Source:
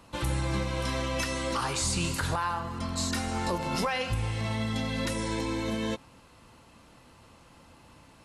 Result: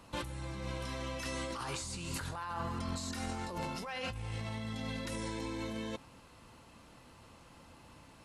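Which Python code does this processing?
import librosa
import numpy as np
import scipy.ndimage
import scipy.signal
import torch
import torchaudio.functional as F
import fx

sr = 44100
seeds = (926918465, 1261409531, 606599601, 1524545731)

y = fx.over_compress(x, sr, threshold_db=-34.0, ratio=-1.0)
y = F.gain(torch.from_numpy(y), -5.5).numpy()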